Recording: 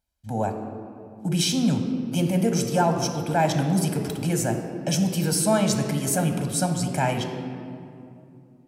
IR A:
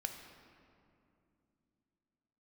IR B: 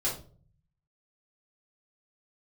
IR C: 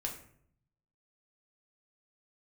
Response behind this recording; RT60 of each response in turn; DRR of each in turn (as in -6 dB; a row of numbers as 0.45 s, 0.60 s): A; 2.6 s, 0.45 s, 0.65 s; 4.5 dB, -7.0 dB, 0.5 dB